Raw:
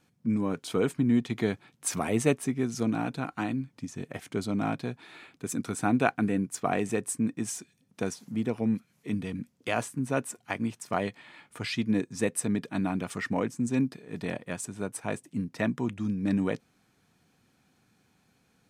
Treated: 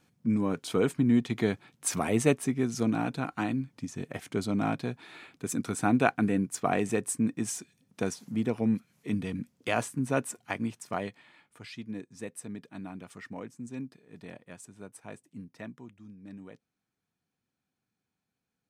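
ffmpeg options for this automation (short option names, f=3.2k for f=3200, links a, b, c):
-af "volume=0.5dB,afade=t=out:st=10.27:d=1.33:silence=0.237137,afade=t=out:st=15.47:d=0.46:silence=0.446684"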